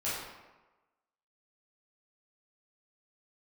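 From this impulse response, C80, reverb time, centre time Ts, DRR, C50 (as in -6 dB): 2.5 dB, 1.2 s, 79 ms, -11.0 dB, -0.5 dB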